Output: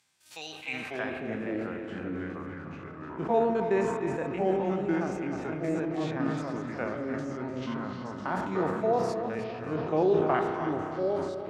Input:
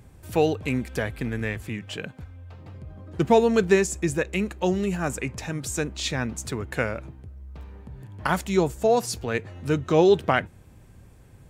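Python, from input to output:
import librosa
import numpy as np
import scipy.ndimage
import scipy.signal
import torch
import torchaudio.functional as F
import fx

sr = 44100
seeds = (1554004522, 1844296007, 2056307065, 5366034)

p1 = fx.spec_steps(x, sr, hold_ms=50)
p2 = scipy.signal.sosfilt(scipy.signal.butter(2, 110.0, 'highpass', fs=sr, output='sos'), p1)
p3 = fx.echo_pitch(p2, sr, ms=477, semitones=-3, count=3, db_per_echo=-3.0)
p4 = fx.peak_eq(p3, sr, hz=470.0, db=-7.0, octaves=0.96)
p5 = p4 + fx.echo_feedback(p4, sr, ms=300, feedback_pct=44, wet_db=-9.5, dry=0)
p6 = fx.filter_sweep_bandpass(p5, sr, from_hz=4700.0, to_hz=560.0, start_s=0.47, end_s=1.25, q=1.1)
p7 = fx.rev_spring(p6, sr, rt60_s=3.9, pass_ms=(32,), chirp_ms=70, drr_db=8.0)
y = fx.sustainer(p7, sr, db_per_s=39.0)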